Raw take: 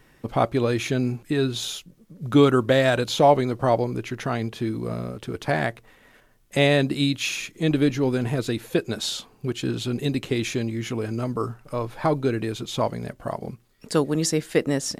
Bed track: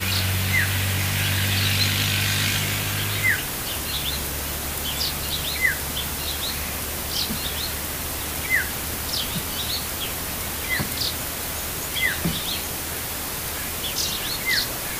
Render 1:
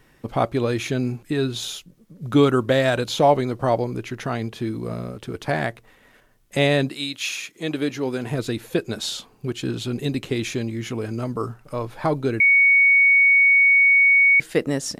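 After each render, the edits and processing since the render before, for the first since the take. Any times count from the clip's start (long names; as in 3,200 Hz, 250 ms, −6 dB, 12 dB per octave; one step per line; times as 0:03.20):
0:06.88–0:08.30: high-pass filter 980 Hz → 240 Hz 6 dB per octave
0:12.40–0:14.40: beep over 2,230 Hz −11.5 dBFS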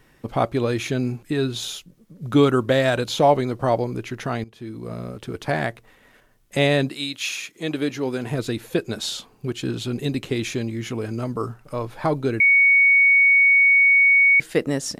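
0:04.44–0:05.15: fade in, from −18 dB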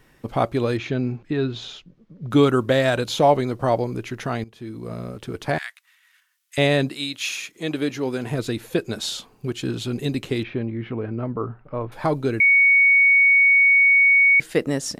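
0:00.77–0:02.31: high-frequency loss of the air 190 metres
0:05.58–0:06.58: Bessel high-pass filter 2,000 Hz, order 6
0:10.43–0:11.92: Gaussian smoothing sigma 3.4 samples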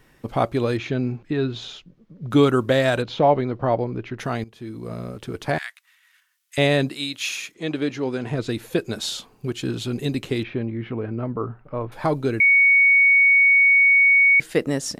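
0:03.02–0:04.19: high-frequency loss of the air 250 metres
0:07.54–0:08.49: high-frequency loss of the air 67 metres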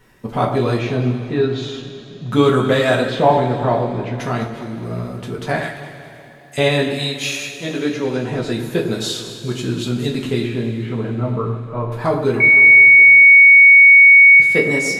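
delay that swaps between a low-pass and a high-pass 103 ms, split 1,600 Hz, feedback 67%, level −9 dB
coupled-rooms reverb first 0.28 s, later 3.7 s, from −19 dB, DRR −2.5 dB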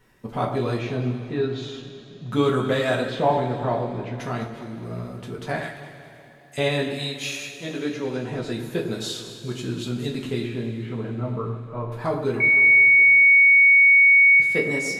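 level −7 dB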